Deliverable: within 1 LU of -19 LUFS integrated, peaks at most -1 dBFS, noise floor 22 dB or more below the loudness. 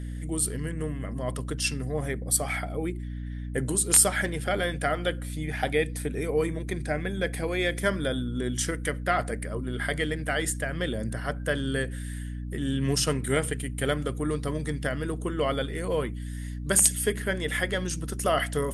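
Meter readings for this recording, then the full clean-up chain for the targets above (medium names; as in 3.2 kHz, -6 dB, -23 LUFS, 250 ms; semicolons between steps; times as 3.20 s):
hum 60 Hz; highest harmonic 300 Hz; hum level -32 dBFS; loudness -28.0 LUFS; peak level -6.0 dBFS; loudness target -19.0 LUFS
-> hum notches 60/120/180/240/300 Hz; trim +9 dB; peak limiter -1 dBFS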